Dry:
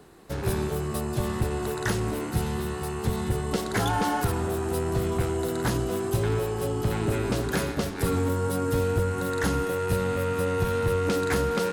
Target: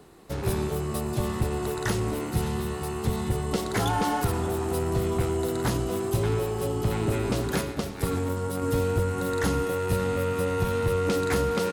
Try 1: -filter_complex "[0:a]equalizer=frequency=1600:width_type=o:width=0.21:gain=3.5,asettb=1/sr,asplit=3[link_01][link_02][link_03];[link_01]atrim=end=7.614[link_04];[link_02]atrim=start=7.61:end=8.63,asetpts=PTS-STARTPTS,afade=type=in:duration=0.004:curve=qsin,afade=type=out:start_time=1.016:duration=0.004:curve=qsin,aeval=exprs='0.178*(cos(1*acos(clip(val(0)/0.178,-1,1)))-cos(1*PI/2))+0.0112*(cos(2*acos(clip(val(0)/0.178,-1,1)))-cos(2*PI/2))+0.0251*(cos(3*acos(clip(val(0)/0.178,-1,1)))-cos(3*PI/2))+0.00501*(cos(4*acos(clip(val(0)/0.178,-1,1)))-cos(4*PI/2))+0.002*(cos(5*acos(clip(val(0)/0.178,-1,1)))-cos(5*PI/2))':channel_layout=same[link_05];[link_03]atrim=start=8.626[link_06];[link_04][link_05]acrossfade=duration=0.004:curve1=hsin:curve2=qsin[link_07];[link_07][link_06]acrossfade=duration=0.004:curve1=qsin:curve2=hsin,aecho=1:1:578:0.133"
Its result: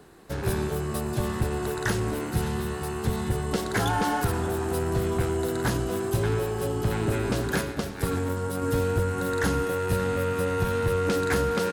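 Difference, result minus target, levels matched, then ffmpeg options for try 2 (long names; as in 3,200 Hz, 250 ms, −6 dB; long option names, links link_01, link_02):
2,000 Hz band +3.0 dB
-filter_complex "[0:a]equalizer=frequency=1600:width_type=o:width=0.21:gain=-5,asettb=1/sr,asplit=3[link_01][link_02][link_03];[link_01]atrim=end=7.614[link_04];[link_02]atrim=start=7.61:end=8.63,asetpts=PTS-STARTPTS,afade=type=in:duration=0.004:curve=qsin,afade=type=out:start_time=1.016:duration=0.004:curve=qsin,aeval=exprs='0.178*(cos(1*acos(clip(val(0)/0.178,-1,1)))-cos(1*PI/2))+0.0112*(cos(2*acos(clip(val(0)/0.178,-1,1)))-cos(2*PI/2))+0.0251*(cos(3*acos(clip(val(0)/0.178,-1,1)))-cos(3*PI/2))+0.00501*(cos(4*acos(clip(val(0)/0.178,-1,1)))-cos(4*PI/2))+0.002*(cos(5*acos(clip(val(0)/0.178,-1,1)))-cos(5*PI/2))':channel_layout=same[link_05];[link_03]atrim=start=8.626[link_06];[link_04][link_05]acrossfade=duration=0.004:curve1=hsin:curve2=qsin[link_07];[link_07][link_06]acrossfade=duration=0.004:curve1=qsin:curve2=hsin,aecho=1:1:578:0.133"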